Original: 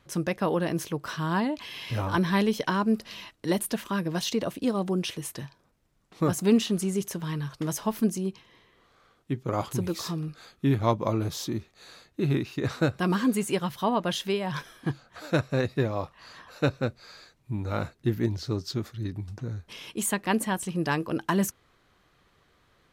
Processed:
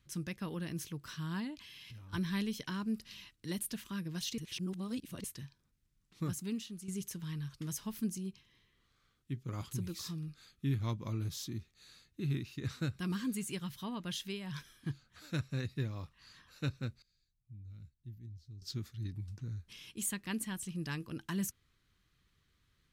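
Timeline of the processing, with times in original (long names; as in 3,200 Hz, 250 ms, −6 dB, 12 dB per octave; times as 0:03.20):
0:01.55–0:02.13: downward compressor 12 to 1, threshold −39 dBFS
0:04.38–0:05.24: reverse
0:06.23–0:06.88: fade out quadratic, to −9.5 dB
0:17.02–0:18.62: guitar amp tone stack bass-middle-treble 10-0-1
whole clip: guitar amp tone stack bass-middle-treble 6-0-2; level +7.5 dB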